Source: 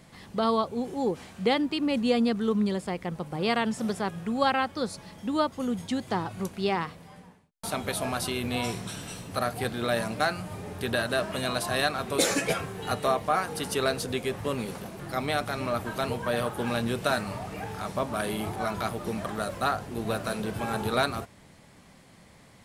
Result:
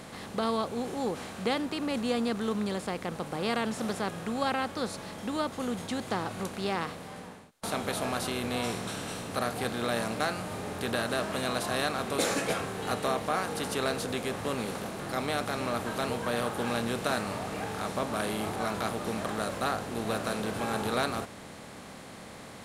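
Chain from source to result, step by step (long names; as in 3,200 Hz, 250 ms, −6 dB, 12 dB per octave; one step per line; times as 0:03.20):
compressor on every frequency bin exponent 0.6
level −7.5 dB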